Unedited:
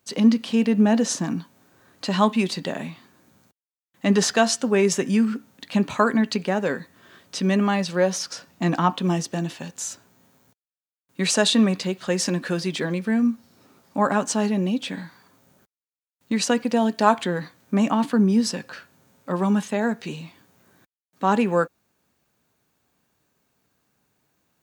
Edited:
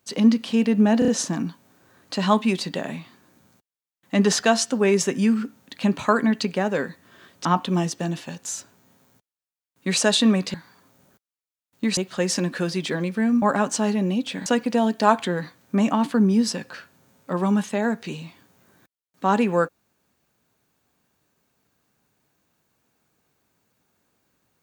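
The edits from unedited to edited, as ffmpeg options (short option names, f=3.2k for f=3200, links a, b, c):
-filter_complex "[0:a]asplit=9[a][b][c][d][e][f][g][h][i];[a]atrim=end=1.022[j];[b]atrim=start=0.988:end=1.022[k];[c]atrim=start=0.988:end=1.022[l];[d]atrim=start=0.988:end=7.362[m];[e]atrim=start=8.778:end=11.872[n];[f]atrim=start=15.018:end=16.452[o];[g]atrim=start=11.868:end=13.322[p];[h]atrim=start=13.978:end=15.022[q];[i]atrim=start=16.448[r];[j][k]acrossfade=d=0.004:c1=hsin:c2=hsin[s];[s][l]acrossfade=d=0.004:c1=hsin:c2=hsin[t];[t][m]acrossfade=d=0.004:c1=hsin:c2=hsin[u];[u][n]acrossfade=d=0.004:c1=hsin:c2=hsin[v];[v][o]acrossfade=d=0.004:c1=hsin:c2=hsin[w];[w][p]acrossfade=d=0.004:c1=hsin:c2=hsin[x];[x][q]acrossfade=d=0.004:c1=hsin:c2=hsin[y];[y][r]acrossfade=d=0.004:c1=hsin:c2=hsin"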